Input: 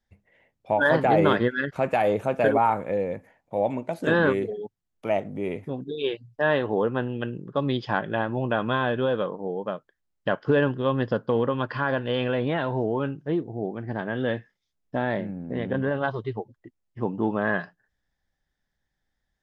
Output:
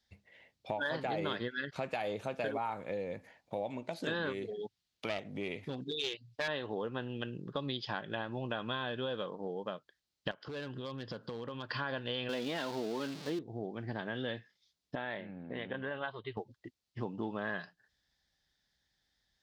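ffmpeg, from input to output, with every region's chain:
-filter_complex "[0:a]asettb=1/sr,asplit=3[a][b][c];[a]atrim=end=4.594[d];[b]atrim=start=4.59:end=6.48,asetpts=PTS-STARTPTS,afade=t=in:d=0.004:c=qsin,afade=t=out:st=1.886:d=0.004:c=qsin,equalizer=f=2.7k:t=o:w=1.9:g=5,aeval=exprs='clip(val(0),-1,0.0631)':c=same[e];[c]atrim=start=6.476[f];[d][e]acrossfade=d=0.004:c1=hsin:c2=qsin[g];[g][f]acrossfade=d=0.004:c1=qsin:c2=hsin,asettb=1/sr,asplit=3[h][i][j];[h]atrim=end=10.314[k];[i]atrim=start=10.31:end=11.71,asetpts=PTS-STARTPTS,afade=t=in:d=0.004:c=qsin,afade=t=out:st=1.396:d=0.004:c=qsin,asoftclip=type=hard:threshold=-16.5dB,acompressor=threshold=-35dB:ratio=8:attack=3.2:release=140:knee=1:detection=peak[l];[j]atrim=start=11.706[m];[k][l]acrossfade=d=0.004:c1=hsin:c2=qsin[n];[n][m]acrossfade=d=0.004:c1=qsin:c2=hsin,asettb=1/sr,asplit=3[o][p][q];[o]atrim=end=12.294[r];[p]atrim=start=12.29:end=13.39,asetpts=PTS-STARTPTS,afade=t=in:d=0.004:c=qsin,afade=t=out:st=1.096:d=0.004:c=qsin,aeval=exprs='val(0)+0.5*0.0237*sgn(val(0))':c=same,lowshelf=f=150:t=q:w=1.5:g=-11.5[s];[q]atrim=start=13.386[t];[r][s]acrossfade=d=0.004:c1=hsin:c2=qsin[u];[u][t]acrossfade=d=0.004:c1=qsin:c2=hsin,asettb=1/sr,asplit=3[v][w][x];[v]atrim=end=14.954[y];[w]atrim=start=14.95:end=16.37,asetpts=PTS-STARTPTS,afade=t=in:d=0.004:c=qsin,afade=t=out:st=1.416:d=0.004:c=qsin,lowpass=f=3.2k:w=0.5412,lowpass=f=3.2k:w=1.3066,lowshelf=f=450:g=-10.5[z];[x]atrim=start=16.366[aa];[y][z]acrossfade=d=0.004:c1=hsin:c2=qsin[ab];[ab][aa]acrossfade=d=0.004:c1=qsin:c2=hsin,highpass=42,equalizer=f=4.3k:t=o:w=1.4:g=14.5,acompressor=threshold=-35dB:ratio=3,volume=-2.5dB"

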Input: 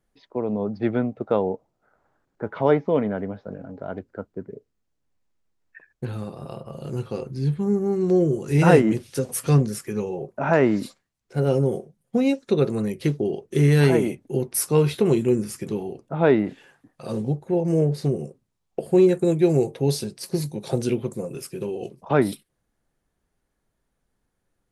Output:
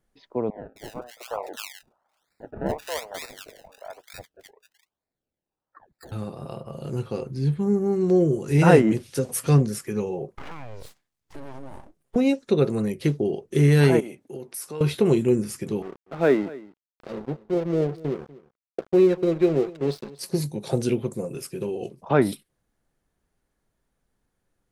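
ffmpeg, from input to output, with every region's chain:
-filter_complex "[0:a]asettb=1/sr,asplit=3[a][b][c];[a]atrim=end=0.504[d];[b]atrim=start=0.5:end=6.12,asetpts=PTS-STARTPTS,afade=t=in:d=0.004:c=qsin,afade=t=out:st=5.616:d=0.004:c=qsin,highpass=f=690:w=0.5412,highpass=f=690:w=1.3066,acrusher=samples=28:mix=1:aa=0.000001:lfo=1:lforange=28:lforate=1.1,acrossover=split=1500[e][f];[f]adelay=260[g];[e][g]amix=inputs=2:normalize=0,atrim=end_sample=247842[h];[c]atrim=start=6.116[i];[d][h]acrossfade=d=0.004:c1=hsin:c2=qsin[j];[j][i]acrossfade=d=0.004:c1=qsin:c2=hsin,asettb=1/sr,asplit=3[k][l][m];[k]atrim=end=10.354[n];[l]atrim=start=10.35:end=12.16,asetpts=PTS-STARTPTS,afade=t=in:d=0.004:c=qsin,afade=t=out:st=1.806:d=0.004:c=qsin,acompressor=threshold=-33dB:ratio=8:attack=3.2:release=140:knee=1:detection=peak,aeval=exprs='abs(val(0))':c=same[o];[m]atrim=start=12.156[p];[n][o]acrossfade=d=0.004:c1=hsin:c2=qsin[q];[q][p]acrossfade=d=0.004:c1=qsin:c2=hsin,asettb=1/sr,asplit=3[r][s][t];[r]atrim=end=14.004[u];[s]atrim=start=14:end=14.81,asetpts=PTS-STARTPTS,afade=t=in:d=0.004:c=qsin,afade=t=out:st=0.806:d=0.004:c=qsin,highpass=f=340:p=1,acompressor=threshold=-36dB:ratio=2.5:attack=3.2:release=140:knee=1:detection=peak[v];[t]atrim=start=14.806[w];[u][v]acrossfade=d=0.004:c1=hsin:c2=qsin[x];[x][w]acrossfade=d=0.004:c1=qsin:c2=hsin,asettb=1/sr,asplit=3[y][z][aa];[y]atrim=end=15.824[ab];[z]atrim=start=15.82:end=20.19,asetpts=PTS-STARTPTS,afade=t=in:d=0.004:c=qsin,afade=t=out:st=4.366:d=0.004:c=qsin,highpass=f=170:w=0.5412,highpass=f=170:w=1.3066,equalizer=f=220:t=q:w=4:g=-5,equalizer=f=890:t=q:w=4:g=-8,equalizer=f=3.1k:t=q:w=4:g=-5,lowpass=f=4.3k:w=0.5412,lowpass=f=4.3k:w=1.3066,aeval=exprs='sgn(val(0))*max(abs(val(0))-0.0141,0)':c=same,aecho=1:1:242:0.106,atrim=end_sample=192717[ac];[aa]atrim=start=20.186[ad];[ab][ac]acrossfade=d=0.004:c1=hsin:c2=qsin[ae];[ae][ad]acrossfade=d=0.004:c1=qsin:c2=hsin"

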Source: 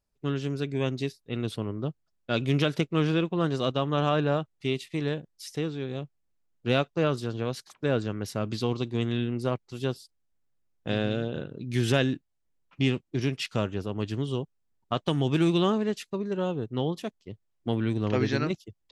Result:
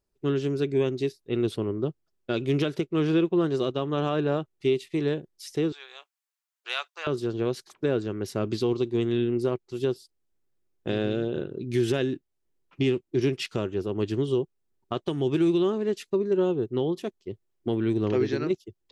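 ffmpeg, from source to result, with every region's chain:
-filter_complex "[0:a]asettb=1/sr,asplit=3[a][b][c];[a]atrim=end=5.724[d];[b]atrim=start=5.72:end=7.07,asetpts=PTS-STARTPTS,afade=t=in:d=0.004:c=qsin,afade=t=out:st=1.346:d=0.004:c=qsin,highpass=f=930:w=0.5412,highpass=f=930:w=1.3066,highshelf=f=5.1k:g=5[e];[c]atrim=start=7.066[f];[d][e]acrossfade=d=0.004:c1=hsin:c2=qsin[g];[g][f]acrossfade=d=0.004:c1=qsin:c2=hsin,equalizer=f=370:w=3.1:g=12,alimiter=limit=-15dB:level=0:latency=1:release=458"

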